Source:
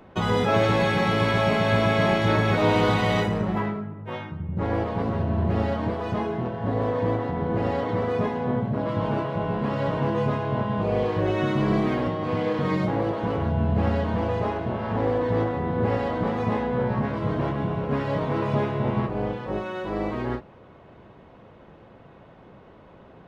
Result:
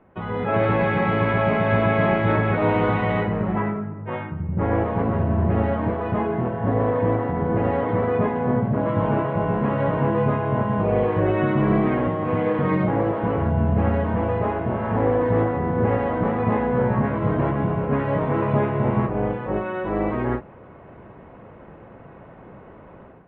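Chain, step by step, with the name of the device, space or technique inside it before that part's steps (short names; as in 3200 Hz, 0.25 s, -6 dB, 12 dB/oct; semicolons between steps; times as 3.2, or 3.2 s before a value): action camera in a waterproof case (LPF 2400 Hz 24 dB/oct; AGC gain up to 12 dB; gain -6.5 dB; AAC 64 kbps 48000 Hz)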